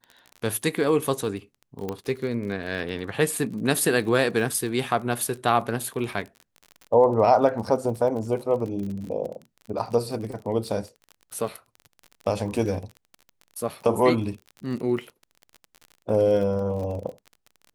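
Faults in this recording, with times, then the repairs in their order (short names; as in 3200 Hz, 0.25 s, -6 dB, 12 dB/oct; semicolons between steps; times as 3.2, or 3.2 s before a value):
crackle 36/s -33 dBFS
1.89 pop -16 dBFS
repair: de-click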